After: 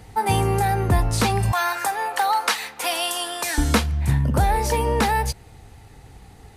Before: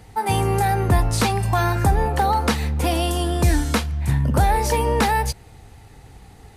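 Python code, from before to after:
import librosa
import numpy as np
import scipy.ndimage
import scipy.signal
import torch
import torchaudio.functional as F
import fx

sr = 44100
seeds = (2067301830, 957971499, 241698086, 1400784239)

y = fx.highpass(x, sr, hz=960.0, slope=12, at=(1.52, 3.58))
y = fx.rider(y, sr, range_db=3, speed_s=0.5)
y = y * librosa.db_to_amplitude(1.0)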